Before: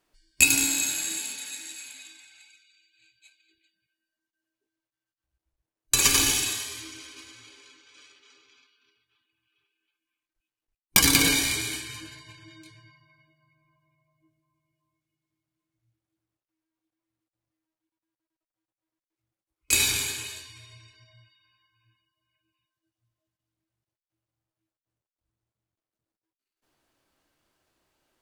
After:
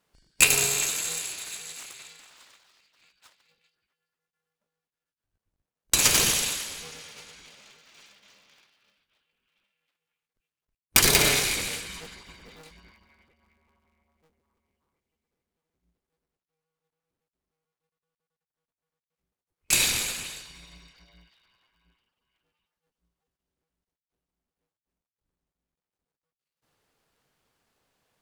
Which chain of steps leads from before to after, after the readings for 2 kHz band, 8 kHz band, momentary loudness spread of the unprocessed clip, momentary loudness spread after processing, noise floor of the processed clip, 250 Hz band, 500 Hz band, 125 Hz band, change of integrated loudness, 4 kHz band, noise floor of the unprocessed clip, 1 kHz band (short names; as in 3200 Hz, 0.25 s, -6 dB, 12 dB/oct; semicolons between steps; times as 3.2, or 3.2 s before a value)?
0.0 dB, 0.0 dB, 21 LU, 20 LU, under -85 dBFS, -5.0 dB, +5.5 dB, +0.5 dB, 0.0 dB, 0.0 dB, under -85 dBFS, +2.0 dB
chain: cycle switcher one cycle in 2, inverted